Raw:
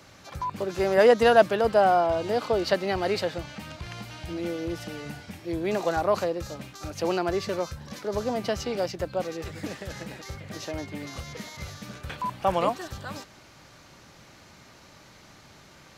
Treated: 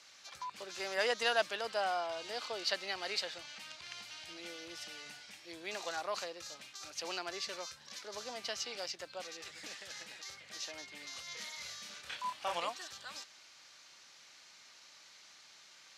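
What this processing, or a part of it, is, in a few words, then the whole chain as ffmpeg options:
piezo pickup straight into a mixer: -filter_complex "[0:a]asettb=1/sr,asplit=3[a][b][c];[a]atrim=end=11.244[d];[b]atrim=start=11.24:end=12.6,asetpts=PTS-STARTPTS,afade=t=in:d=0.004:c=qsin,afade=t=out:st=1.356:d=0.004:c=qsin,asplit=2[e][f];[f]adelay=29,volume=-2.5dB[g];[e][g]amix=inputs=2:normalize=0,atrim=end_sample=59976[h];[c]atrim=start=12.596[i];[d][h]acrossfade=d=0.004:c1=hsin:c2=qsin[j];[j][i]acrossfade=d=0.004:c1=qsin:c2=hsin,lowpass=5.2k,aderivative,volume=5dB"

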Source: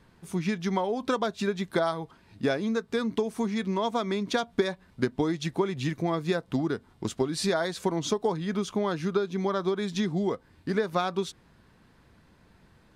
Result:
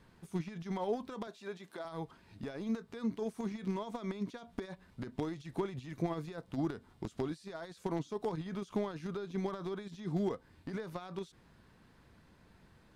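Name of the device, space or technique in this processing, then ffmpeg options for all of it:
de-esser from a sidechain: -filter_complex "[0:a]asplit=2[a][b];[b]highpass=4.4k,apad=whole_len=571265[c];[a][c]sidechaincompress=threshold=-55dB:ratio=10:attack=0.61:release=27,asettb=1/sr,asplit=3[d][e][f];[d]atrim=end=1.274[g];[e]atrim=start=1.27:end=1.85,asetpts=PTS-STARTPTS,afade=t=in:d=0.004:c=qsin,afade=t=out:st=0.576:d=0.004:c=qsin,highpass=290[h];[f]atrim=start=1.846[i];[g][h]acrossfade=d=0.004:c1=hsin:c2=qsin[j];[j][i]acrossfade=d=0.004:c1=qsin:c2=hsin,volume=-3.5dB"

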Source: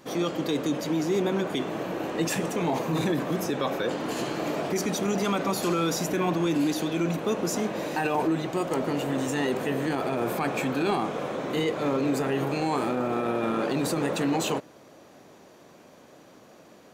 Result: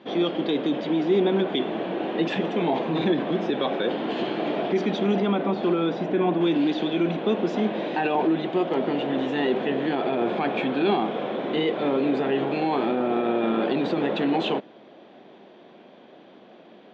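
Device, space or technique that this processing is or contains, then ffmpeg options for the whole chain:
kitchen radio: -filter_complex "[0:a]asettb=1/sr,asplit=3[a][b][c];[a]atrim=end=5.204[d];[b]atrim=start=5.2:end=6.41,asetpts=PTS-STARTPTS,afade=t=in:d=0.004:c=qsin,afade=t=out:st=1.206:d=0.004:c=qsin,lowpass=f=1.7k:p=1[e];[c]atrim=start=6.406[f];[d][e]acrossfade=d=0.004:c1=hsin:c2=qsin[g];[g][f]acrossfade=d=0.004:c1=qsin:c2=hsin,highpass=190,equalizer=f=210:t=q:w=4:g=7,equalizer=f=370:t=q:w=4:g=5,equalizer=f=720:t=q:w=4:g=4,equalizer=f=1.2k:t=q:w=4:g=-4,equalizer=f=3.4k:t=q:w=4:g=8,lowpass=f=3.5k:w=0.5412,lowpass=f=3.5k:w=1.3066,volume=1dB"

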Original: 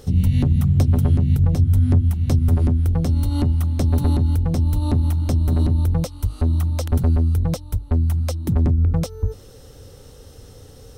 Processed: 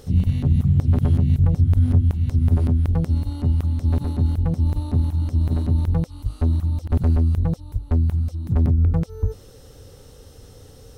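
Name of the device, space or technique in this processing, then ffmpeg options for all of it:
de-esser from a sidechain: -filter_complex "[0:a]asplit=2[a][b];[b]highpass=f=4.3k:w=0.5412,highpass=f=4.3k:w=1.3066,apad=whole_len=484036[c];[a][c]sidechaincompress=threshold=-51dB:ratio=8:attack=0.54:release=22"

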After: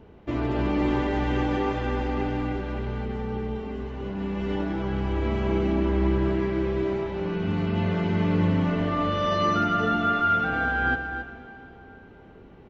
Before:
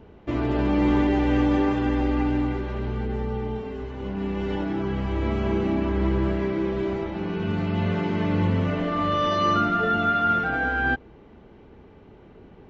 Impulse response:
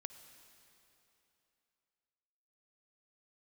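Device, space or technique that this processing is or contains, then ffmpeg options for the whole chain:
cave: -filter_complex "[0:a]aecho=1:1:270:0.335[a];[1:a]atrim=start_sample=2205[b];[a][b]afir=irnorm=-1:irlink=0,volume=3dB"

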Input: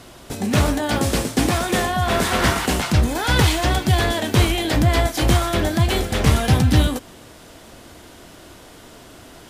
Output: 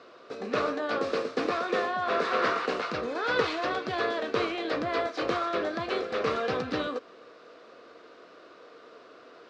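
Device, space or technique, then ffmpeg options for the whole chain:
phone earpiece: -af "highpass=400,equalizer=f=470:t=q:w=4:g=10,equalizer=f=860:t=q:w=4:g=-9,equalizer=f=1.2k:t=q:w=4:g=8,equalizer=f=2k:t=q:w=4:g=-4,equalizer=f=3.2k:t=q:w=4:g=-9,lowpass=f=4.2k:w=0.5412,lowpass=f=4.2k:w=1.3066,volume=-6.5dB"

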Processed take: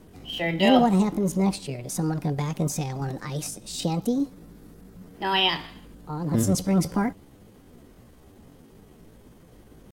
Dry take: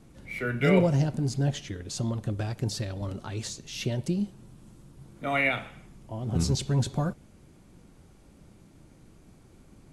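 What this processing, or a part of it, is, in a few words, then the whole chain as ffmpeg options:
chipmunk voice: -af "asetrate=60591,aresample=44100,atempo=0.727827,volume=3.5dB"

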